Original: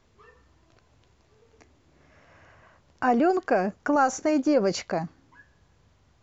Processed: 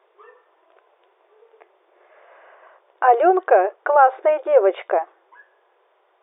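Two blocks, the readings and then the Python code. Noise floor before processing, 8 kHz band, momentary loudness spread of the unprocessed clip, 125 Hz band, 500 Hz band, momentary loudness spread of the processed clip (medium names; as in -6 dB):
-63 dBFS, no reading, 9 LU, under -35 dB, +9.0 dB, 9 LU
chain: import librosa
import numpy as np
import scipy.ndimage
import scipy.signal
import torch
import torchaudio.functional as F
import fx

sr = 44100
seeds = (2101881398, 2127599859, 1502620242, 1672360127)

y = fx.brickwall_bandpass(x, sr, low_hz=340.0, high_hz=3700.0)
y = fx.peak_eq(y, sr, hz=690.0, db=11.5, octaves=2.8)
y = F.gain(torch.from_numpy(y), -1.5).numpy()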